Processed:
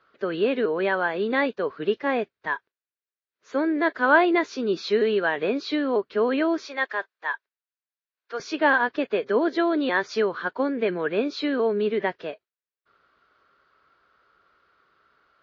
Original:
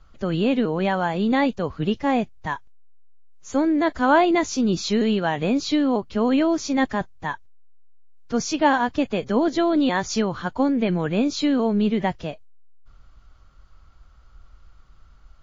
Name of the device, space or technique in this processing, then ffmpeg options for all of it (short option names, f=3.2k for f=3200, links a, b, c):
phone earpiece: -filter_complex "[0:a]highpass=400,equalizer=f=410:t=q:w=4:g=8,equalizer=f=800:t=q:w=4:g=-7,equalizer=f=1.6k:t=q:w=4:g=6,equalizer=f=3.1k:t=q:w=4:g=-4,lowpass=f=4.1k:w=0.5412,lowpass=f=4.1k:w=1.3066,asettb=1/sr,asplit=3[a][b][c];[a]atrim=end=6.654[d];[b]atrim=start=6.65:end=8.4,asetpts=PTS-STARTPTS,afade=t=in:d=0.004:c=qsin,afade=t=out:st=1.746:d=0.004:c=qsin,highpass=650[e];[c]atrim=start=8.396[f];[d][e]acrossfade=d=0.004:c1=hsin:c2=qsin[g];[g][f]acrossfade=d=0.004:c1=qsin:c2=hsin"